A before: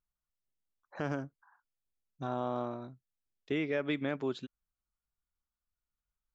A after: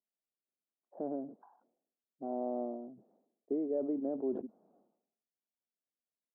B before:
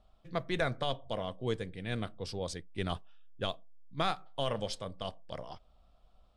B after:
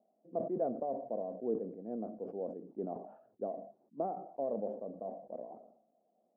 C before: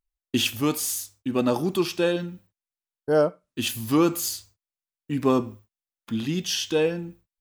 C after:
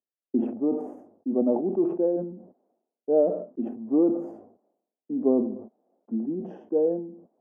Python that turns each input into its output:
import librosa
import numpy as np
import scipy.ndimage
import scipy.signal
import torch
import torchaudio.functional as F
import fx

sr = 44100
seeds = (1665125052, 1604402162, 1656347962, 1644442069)

y = scipy.signal.sosfilt(scipy.signal.ellip(3, 1.0, 70, [220.0, 710.0], 'bandpass', fs=sr, output='sos'), x)
y = fx.sustainer(y, sr, db_per_s=83.0)